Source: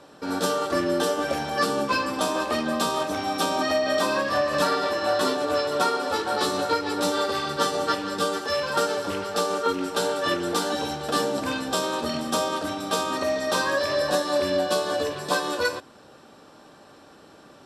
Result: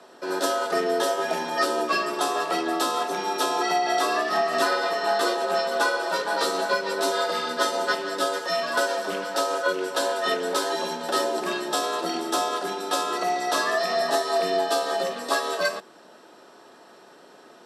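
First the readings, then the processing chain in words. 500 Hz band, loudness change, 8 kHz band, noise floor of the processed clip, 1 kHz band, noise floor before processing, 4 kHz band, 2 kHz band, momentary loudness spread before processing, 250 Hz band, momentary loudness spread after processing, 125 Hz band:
-0.5 dB, 0.0 dB, +0.5 dB, -51 dBFS, +1.5 dB, -51 dBFS, 0.0 dB, +2.0 dB, 4 LU, -4.0 dB, 4 LU, under -10 dB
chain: frequency shift +96 Hz

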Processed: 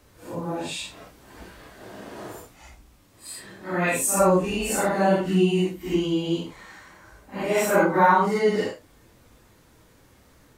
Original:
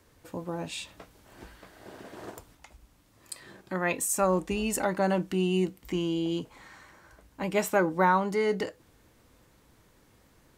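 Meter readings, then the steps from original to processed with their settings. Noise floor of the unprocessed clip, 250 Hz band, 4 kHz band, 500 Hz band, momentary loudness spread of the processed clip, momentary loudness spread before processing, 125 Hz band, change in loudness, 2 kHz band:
-63 dBFS, +5.0 dB, +5.5 dB, +6.0 dB, 20 LU, 20 LU, +5.5 dB, +6.0 dB, +5.5 dB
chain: phase scrambler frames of 0.2 s; gain +5.5 dB

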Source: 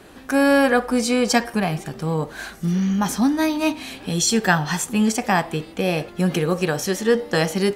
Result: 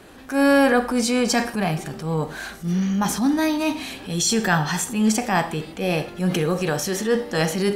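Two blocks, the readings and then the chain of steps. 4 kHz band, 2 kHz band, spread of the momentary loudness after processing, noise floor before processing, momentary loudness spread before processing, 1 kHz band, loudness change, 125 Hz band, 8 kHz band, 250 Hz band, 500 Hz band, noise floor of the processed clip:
-0.5 dB, -1.5 dB, 9 LU, -42 dBFS, 8 LU, -1.0 dB, -1.0 dB, -1.0 dB, 0.0 dB, -1.0 dB, -1.5 dB, -40 dBFS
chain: Schroeder reverb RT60 0.42 s, combs from 29 ms, DRR 13.5 dB; transient shaper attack -7 dB, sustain +2 dB

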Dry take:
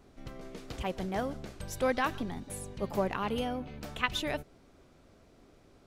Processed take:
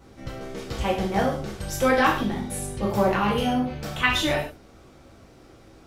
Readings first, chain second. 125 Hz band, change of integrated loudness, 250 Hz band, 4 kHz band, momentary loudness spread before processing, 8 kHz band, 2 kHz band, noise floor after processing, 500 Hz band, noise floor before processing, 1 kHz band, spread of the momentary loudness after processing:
+11.0 dB, +10.0 dB, +10.5 dB, +10.0 dB, 13 LU, +10.5 dB, +11.0 dB, -51 dBFS, +9.0 dB, -61 dBFS, +10.5 dB, 15 LU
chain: non-linear reverb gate 0.17 s falling, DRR -4.5 dB; gain +4.5 dB

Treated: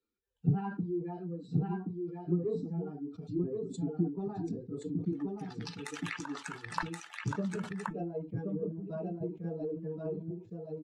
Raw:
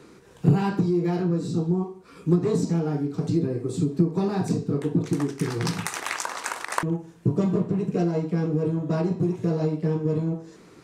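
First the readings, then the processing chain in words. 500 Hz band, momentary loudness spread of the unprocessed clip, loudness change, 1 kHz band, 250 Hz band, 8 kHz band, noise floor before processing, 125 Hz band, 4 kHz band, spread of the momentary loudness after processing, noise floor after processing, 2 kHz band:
-10.5 dB, 7 LU, -11.5 dB, -10.0 dB, -11.5 dB, -15.0 dB, -51 dBFS, -12.0 dB, -11.0 dB, 7 LU, -57 dBFS, -9.0 dB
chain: per-bin expansion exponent 2; treble ducked by the level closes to 1700 Hz, closed at -26 dBFS; resonator 440 Hz, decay 0.16 s, harmonics all, mix 50%; on a send: echo 1.075 s -3.5 dB; on the sum: sustainer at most 130 dB/s; gain -2 dB

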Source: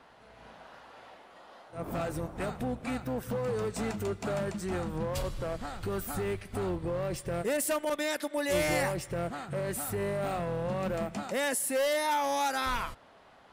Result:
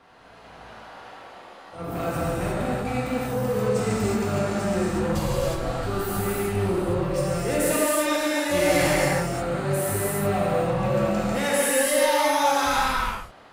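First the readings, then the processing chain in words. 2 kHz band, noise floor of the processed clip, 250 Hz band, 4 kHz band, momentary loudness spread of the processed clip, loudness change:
+8.5 dB, -47 dBFS, +9.5 dB, +8.5 dB, 10 LU, +8.5 dB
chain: non-linear reverb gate 0.39 s flat, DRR -8 dB

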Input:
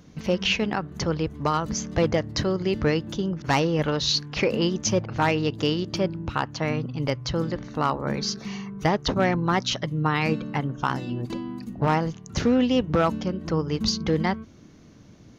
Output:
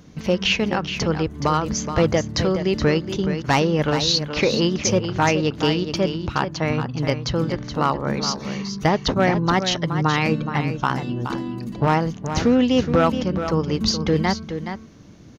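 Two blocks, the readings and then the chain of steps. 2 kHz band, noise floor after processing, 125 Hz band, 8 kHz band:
+4.0 dB, -41 dBFS, +4.0 dB, n/a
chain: echo 0.422 s -9 dB; gain +3.5 dB

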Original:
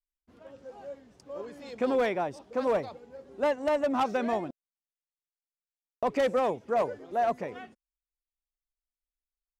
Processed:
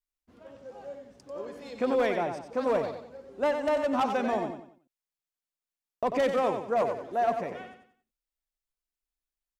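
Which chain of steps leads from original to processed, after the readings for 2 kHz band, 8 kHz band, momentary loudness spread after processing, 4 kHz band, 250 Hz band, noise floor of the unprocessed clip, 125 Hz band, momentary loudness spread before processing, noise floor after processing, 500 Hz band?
+1.0 dB, n/a, 18 LU, +1.0 dB, +0.5 dB, under -85 dBFS, +1.0 dB, 18 LU, under -85 dBFS, +0.5 dB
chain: feedback echo 92 ms, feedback 35%, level -7 dB

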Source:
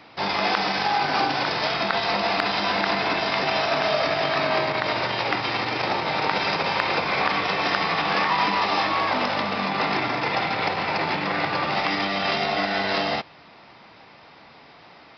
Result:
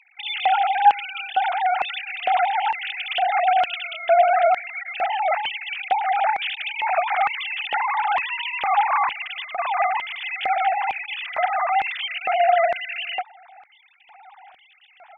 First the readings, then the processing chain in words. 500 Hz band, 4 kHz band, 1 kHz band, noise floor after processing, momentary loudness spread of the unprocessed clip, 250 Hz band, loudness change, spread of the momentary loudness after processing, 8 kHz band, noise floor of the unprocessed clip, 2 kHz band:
+1.0 dB, -4.0 dB, +4.0 dB, -55 dBFS, 3 LU, under -25 dB, +1.0 dB, 9 LU, n/a, -49 dBFS, -1.5 dB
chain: sine-wave speech; LFO high-pass square 1.1 Hz 580–2900 Hz

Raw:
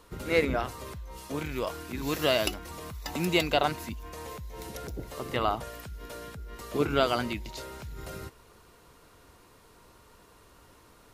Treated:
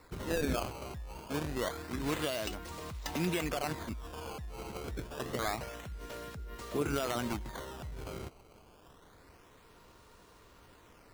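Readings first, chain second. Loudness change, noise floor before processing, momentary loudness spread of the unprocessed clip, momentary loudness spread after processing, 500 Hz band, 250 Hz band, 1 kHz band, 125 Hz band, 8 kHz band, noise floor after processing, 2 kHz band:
-6.5 dB, -57 dBFS, 16 LU, 11 LU, -7.0 dB, -4.0 dB, -7.0 dB, -3.0 dB, -1.5 dB, -60 dBFS, -7.0 dB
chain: limiter -20.5 dBFS, peak gain reduction 11 dB; decimation with a swept rate 14×, swing 160% 0.27 Hz; gain -2 dB

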